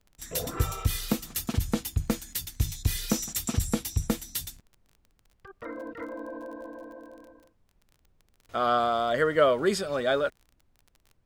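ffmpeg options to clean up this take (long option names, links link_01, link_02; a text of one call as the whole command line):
ffmpeg -i in.wav -af "adeclick=threshold=4,agate=range=-21dB:threshold=-59dB" out.wav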